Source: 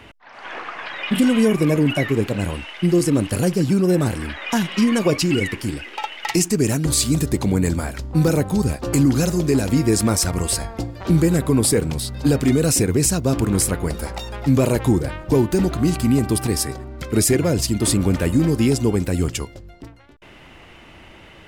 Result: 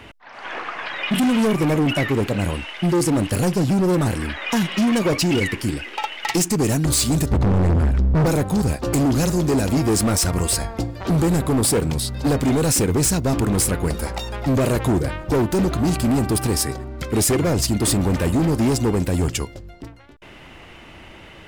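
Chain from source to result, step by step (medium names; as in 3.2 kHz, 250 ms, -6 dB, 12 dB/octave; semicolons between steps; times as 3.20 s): 7.31–8.26 s: RIAA curve playback; overload inside the chain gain 17 dB; trim +2 dB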